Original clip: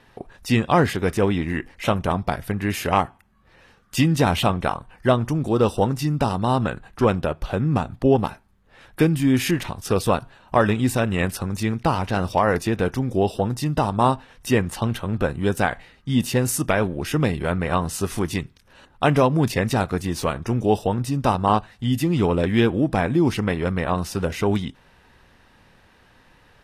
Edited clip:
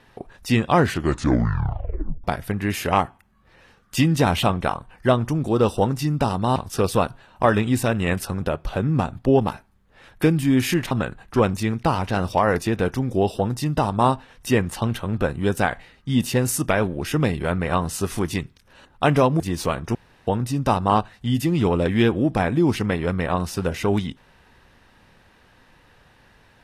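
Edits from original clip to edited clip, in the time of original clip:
0.80 s: tape stop 1.44 s
6.56–7.19 s: swap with 9.68–11.54 s
19.40–19.98 s: delete
20.53–20.85 s: room tone

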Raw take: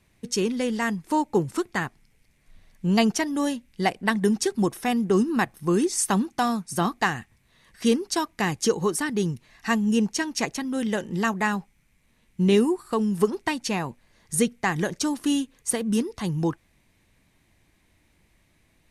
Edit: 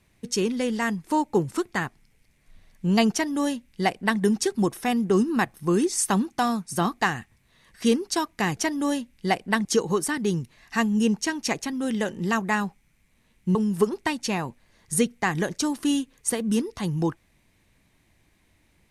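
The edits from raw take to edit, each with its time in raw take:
3.12–4.20 s: copy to 8.57 s
12.47–12.96 s: delete

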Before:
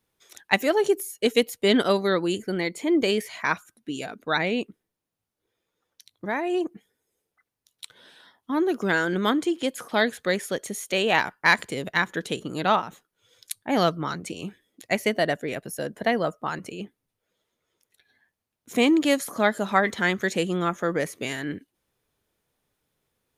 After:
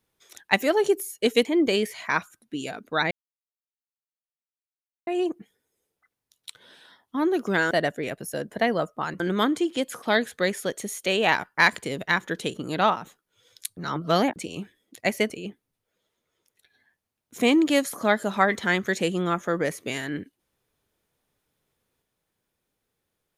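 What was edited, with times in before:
1.45–2.80 s: delete
4.46–6.42 s: mute
13.63–14.22 s: reverse
15.16–16.65 s: move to 9.06 s

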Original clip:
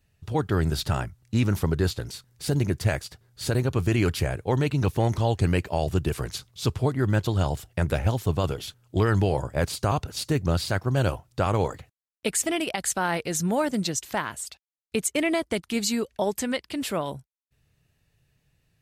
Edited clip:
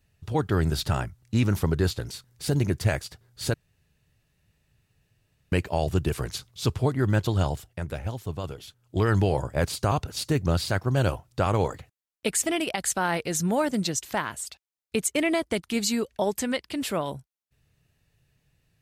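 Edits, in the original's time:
3.54–5.52 s: room tone
7.42–9.11 s: dip -8 dB, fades 0.38 s

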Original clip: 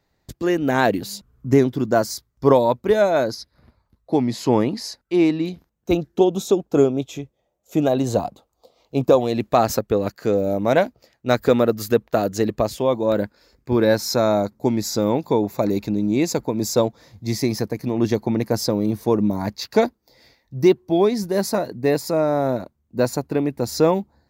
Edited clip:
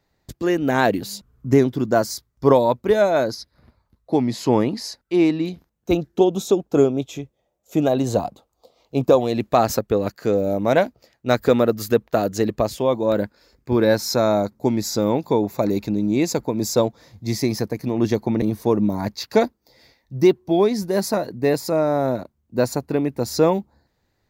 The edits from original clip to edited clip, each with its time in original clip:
18.42–18.83 s: delete

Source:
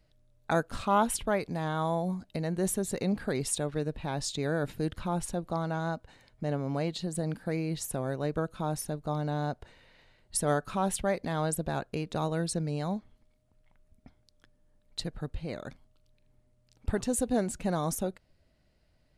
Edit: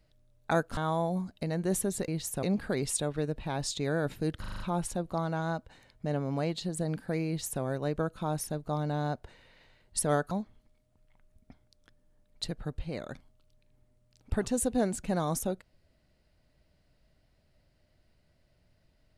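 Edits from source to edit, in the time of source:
0.77–1.70 s: delete
4.98 s: stutter 0.04 s, 6 plays
7.65–8.00 s: copy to 3.01 s
10.69–12.87 s: delete

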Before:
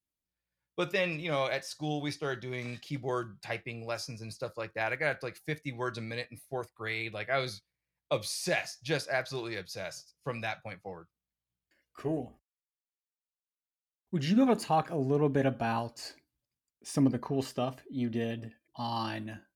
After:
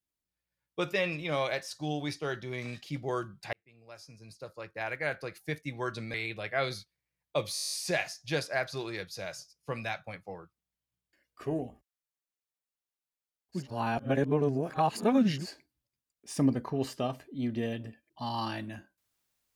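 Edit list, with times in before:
3.53–5.49 s: fade in linear
6.14–6.90 s: delete
8.30 s: stutter 0.02 s, 10 plays
14.18–15.99 s: reverse, crossfade 0.16 s

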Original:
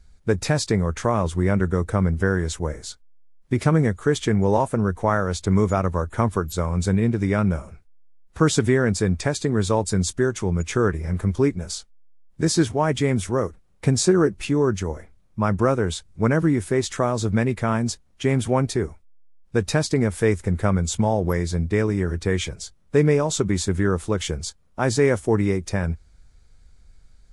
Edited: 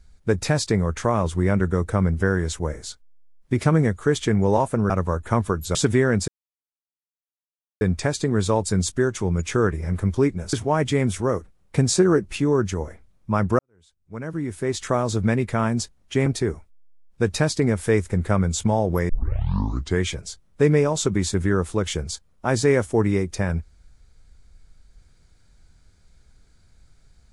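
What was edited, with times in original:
4.90–5.77 s: delete
6.62–8.49 s: delete
9.02 s: insert silence 1.53 s
11.74–12.62 s: delete
15.68–17.00 s: fade in quadratic
18.35–18.60 s: delete
21.43 s: tape start 0.92 s

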